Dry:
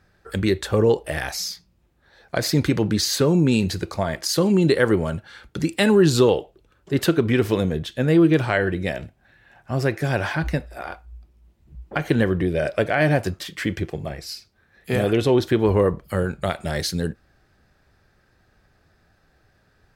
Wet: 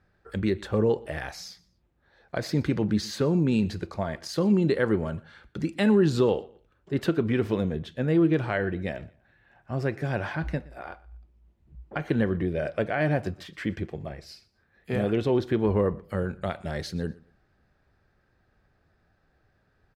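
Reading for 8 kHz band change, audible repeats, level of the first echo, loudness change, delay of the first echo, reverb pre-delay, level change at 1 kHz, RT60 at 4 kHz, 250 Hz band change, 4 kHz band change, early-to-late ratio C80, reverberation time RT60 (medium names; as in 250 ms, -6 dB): under -10 dB, 2, -22.5 dB, -5.5 dB, 120 ms, no reverb, -6.5 dB, no reverb, -4.5 dB, -11.5 dB, no reverb, no reverb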